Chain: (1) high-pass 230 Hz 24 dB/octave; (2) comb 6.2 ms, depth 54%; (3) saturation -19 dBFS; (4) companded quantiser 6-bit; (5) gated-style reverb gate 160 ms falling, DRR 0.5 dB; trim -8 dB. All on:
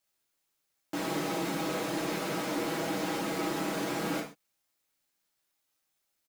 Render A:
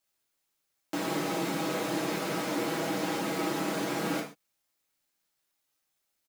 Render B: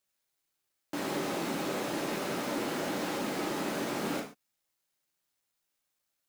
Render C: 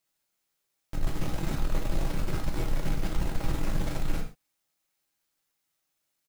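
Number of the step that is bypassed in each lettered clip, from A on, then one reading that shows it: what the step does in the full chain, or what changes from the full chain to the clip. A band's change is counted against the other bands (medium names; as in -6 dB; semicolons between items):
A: 3, loudness change +1.5 LU; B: 2, 125 Hz band -2.0 dB; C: 1, 125 Hz band +15.0 dB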